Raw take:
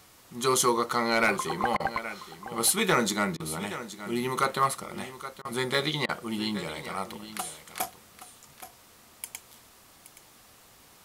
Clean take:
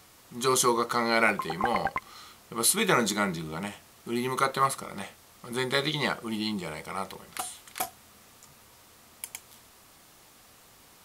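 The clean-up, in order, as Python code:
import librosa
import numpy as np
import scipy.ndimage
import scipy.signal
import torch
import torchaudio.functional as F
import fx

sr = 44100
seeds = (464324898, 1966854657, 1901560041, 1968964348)

y = fx.fix_declip(x, sr, threshold_db=-14.5)
y = fx.fix_interpolate(y, sr, at_s=(1.77, 3.37, 5.42, 6.06), length_ms=28.0)
y = fx.fix_echo_inverse(y, sr, delay_ms=822, level_db=-13.5)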